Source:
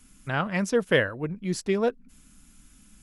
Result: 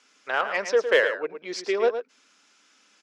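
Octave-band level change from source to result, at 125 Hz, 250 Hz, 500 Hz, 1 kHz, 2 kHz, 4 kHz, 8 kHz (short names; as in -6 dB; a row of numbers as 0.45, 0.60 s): under -25 dB, -10.5 dB, +3.0 dB, +3.5 dB, +3.5 dB, +2.5 dB, -2.0 dB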